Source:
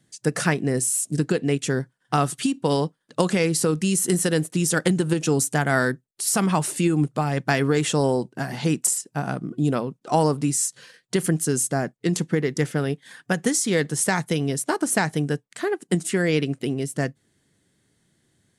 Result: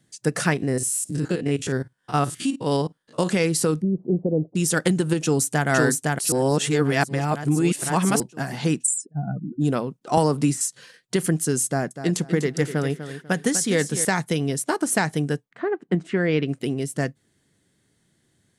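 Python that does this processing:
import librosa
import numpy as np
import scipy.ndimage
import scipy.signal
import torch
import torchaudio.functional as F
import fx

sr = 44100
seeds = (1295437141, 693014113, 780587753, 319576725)

y = fx.spec_steps(x, sr, hold_ms=50, at=(0.56, 3.27), fade=0.02)
y = fx.steep_lowpass(y, sr, hz=690.0, slope=36, at=(3.8, 4.55), fade=0.02)
y = fx.echo_throw(y, sr, start_s=5.22, length_s=0.45, ms=510, feedback_pct=55, wet_db=-1.5)
y = fx.spec_expand(y, sr, power=2.6, at=(8.82, 9.6), fade=0.02)
y = fx.band_squash(y, sr, depth_pct=100, at=(10.17, 10.61))
y = fx.echo_feedback(y, sr, ms=247, feedback_pct=27, wet_db=-11.0, at=(11.66, 14.05))
y = fx.lowpass(y, sr, hz=fx.line((15.49, 1400.0), (16.47, 3300.0)), slope=12, at=(15.49, 16.47), fade=0.02)
y = fx.edit(y, sr, fx.reverse_span(start_s=6.32, length_s=1.88), tone=tone)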